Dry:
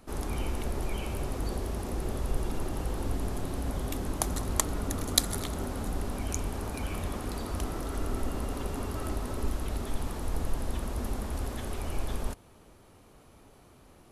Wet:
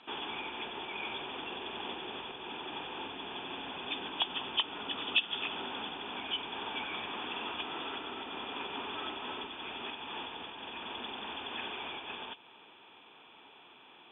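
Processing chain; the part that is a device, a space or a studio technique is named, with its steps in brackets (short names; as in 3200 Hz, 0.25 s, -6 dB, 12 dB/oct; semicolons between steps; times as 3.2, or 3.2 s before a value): hearing aid with frequency lowering (nonlinear frequency compression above 2300 Hz 4:1; compressor 3:1, threshold -32 dBFS, peak gain reduction 12.5 dB; speaker cabinet 360–6100 Hz, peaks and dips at 570 Hz -8 dB, 910 Hz +8 dB, 1600 Hz +5 dB, 2500 Hz +6 dB, 4100 Hz +5 dB)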